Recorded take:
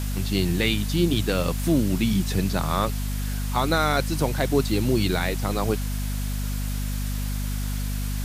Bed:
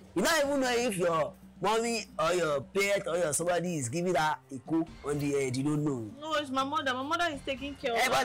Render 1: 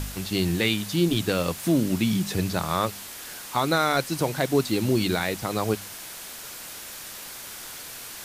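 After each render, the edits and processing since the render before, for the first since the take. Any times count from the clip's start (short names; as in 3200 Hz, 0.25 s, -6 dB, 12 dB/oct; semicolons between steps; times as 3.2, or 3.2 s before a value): de-hum 50 Hz, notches 5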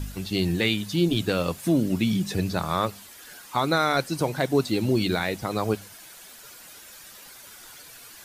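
denoiser 10 dB, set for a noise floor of -40 dBFS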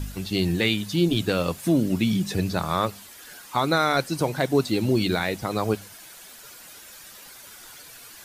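gain +1 dB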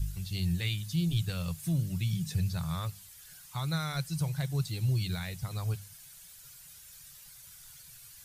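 EQ curve 160 Hz 0 dB, 230 Hz -26 dB, 9100 Hz -5 dB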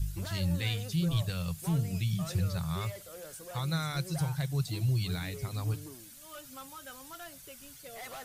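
add bed -17.5 dB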